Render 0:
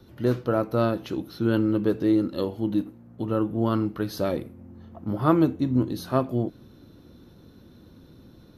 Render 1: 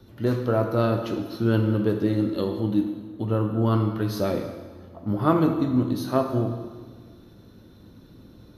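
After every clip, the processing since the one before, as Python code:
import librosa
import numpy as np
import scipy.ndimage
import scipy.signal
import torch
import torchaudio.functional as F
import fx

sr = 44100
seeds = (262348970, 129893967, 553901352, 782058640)

y = fx.rev_plate(x, sr, seeds[0], rt60_s=1.5, hf_ratio=0.9, predelay_ms=0, drr_db=4.0)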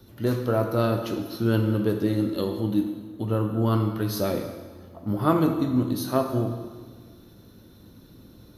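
y = fx.high_shelf(x, sr, hz=6700.0, db=11.5)
y = y * 10.0 ** (-1.0 / 20.0)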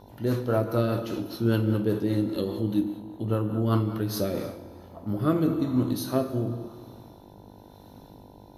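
y = fx.rotary_switch(x, sr, hz=5.0, then_hz=1.0, switch_at_s=3.96)
y = fx.dmg_buzz(y, sr, base_hz=50.0, harmonics=20, level_db=-53.0, tilt_db=0, odd_only=False)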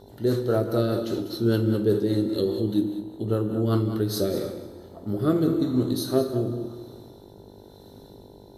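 y = fx.graphic_eq_31(x, sr, hz=(400, 1000, 2500, 4000, 8000), db=(9, -7, -8, 7, 9))
y = y + 10.0 ** (-12.5 / 20.0) * np.pad(y, (int(198 * sr / 1000.0), 0))[:len(y)]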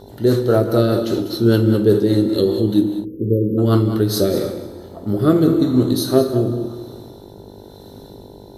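y = fx.spec_erase(x, sr, start_s=3.05, length_s=0.53, low_hz=540.0, high_hz=12000.0)
y = y * 10.0 ** (8.0 / 20.0)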